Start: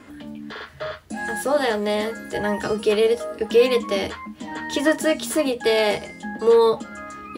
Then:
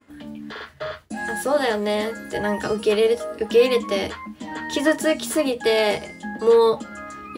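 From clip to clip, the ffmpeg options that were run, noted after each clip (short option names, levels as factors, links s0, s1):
-af "agate=range=0.0224:threshold=0.0126:ratio=3:detection=peak"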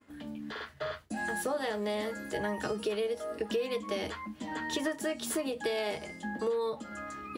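-af "acompressor=threshold=0.0631:ratio=6,volume=0.531"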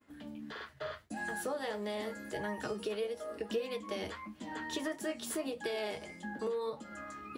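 -af "flanger=delay=5.3:depth=5.3:regen=72:speed=1.6:shape=sinusoidal"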